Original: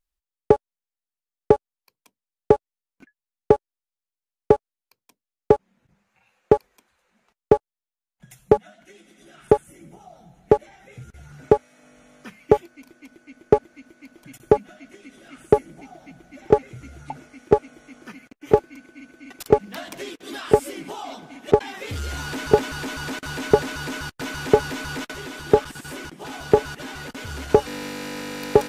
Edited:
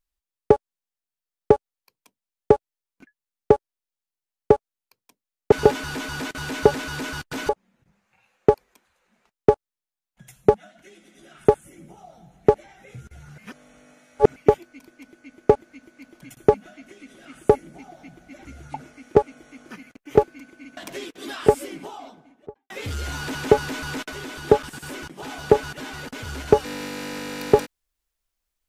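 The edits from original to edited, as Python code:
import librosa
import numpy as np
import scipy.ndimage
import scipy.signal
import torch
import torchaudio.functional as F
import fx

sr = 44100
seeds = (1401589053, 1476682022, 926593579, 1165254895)

y = fx.studio_fade_out(x, sr, start_s=20.53, length_s=1.22)
y = fx.edit(y, sr, fx.reverse_span(start_s=11.41, length_s=0.98),
    fx.cut(start_s=16.48, length_s=0.33),
    fx.cut(start_s=19.13, length_s=0.69),
    fx.move(start_s=22.4, length_s=1.97, to_s=5.52), tone=tone)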